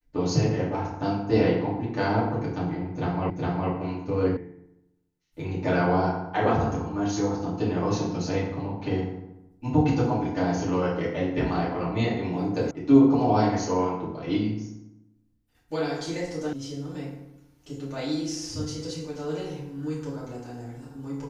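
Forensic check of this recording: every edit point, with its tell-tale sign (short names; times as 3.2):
3.3 repeat of the last 0.41 s
4.37 sound cut off
12.71 sound cut off
16.53 sound cut off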